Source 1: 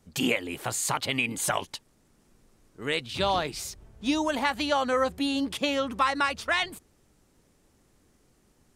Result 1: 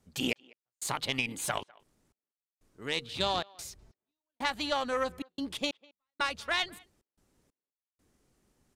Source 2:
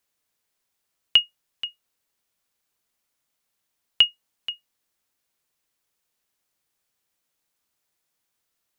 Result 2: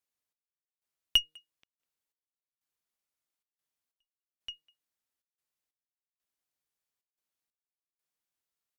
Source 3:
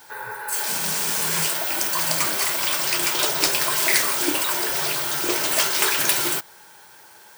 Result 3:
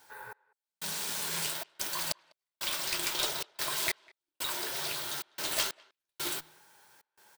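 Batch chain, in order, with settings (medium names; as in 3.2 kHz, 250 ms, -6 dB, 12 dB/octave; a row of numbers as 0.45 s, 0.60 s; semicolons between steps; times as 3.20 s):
de-hum 156 Hz, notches 3; dynamic bell 3.8 kHz, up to +6 dB, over -41 dBFS, Q 2.6; Chebyshev shaper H 5 -25 dB, 6 -23 dB, 7 -22 dB, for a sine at -0.5 dBFS; trance gate "xx...xxxxx." 92 bpm -60 dB; speakerphone echo 200 ms, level -25 dB; peak normalisation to -12 dBFS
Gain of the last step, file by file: -4.0 dB, -9.5 dB, -9.5 dB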